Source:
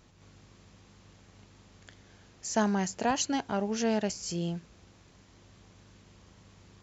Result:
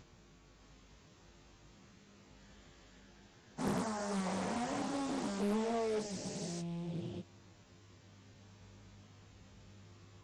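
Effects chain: stepped spectrum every 0.4 s; dynamic EQ 3700 Hz, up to -4 dB, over -55 dBFS, Q 0.75; plain phase-vocoder stretch 1.5×; Doppler distortion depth 0.82 ms; gain +1.5 dB

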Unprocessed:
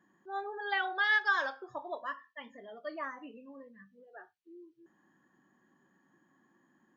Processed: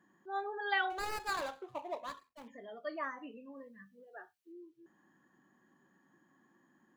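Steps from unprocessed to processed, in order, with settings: 0.9–2.48 median filter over 25 samples; 3.56–4.52 high shelf 5000 Hz +7.5 dB

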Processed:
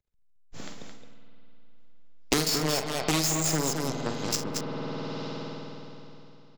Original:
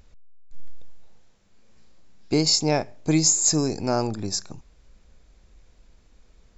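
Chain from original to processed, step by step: spectral delete 3.84–4.06, 260–6100 Hz; wavefolder -15 dBFS; power-law curve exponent 3; on a send: loudspeakers at several distances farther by 16 m -9 dB, 75 m -7 dB; on the sum: spring tank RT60 3.1 s, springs 51 ms, chirp 20 ms, DRR 8.5 dB; three-band squash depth 100%

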